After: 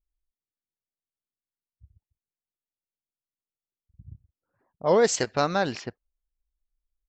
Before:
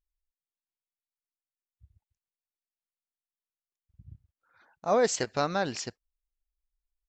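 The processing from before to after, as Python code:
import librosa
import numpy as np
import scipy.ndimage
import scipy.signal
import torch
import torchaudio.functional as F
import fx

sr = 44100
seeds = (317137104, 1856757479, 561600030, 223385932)

y = fx.env_lowpass(x, sr, base_hz=400.0, full_db=-24.5)
y = fx.record_warp(y, sr, rpm=33.33, depth_cents=250.0)
y = F.gain(torch.from_numpy(y), 4.0).numpy()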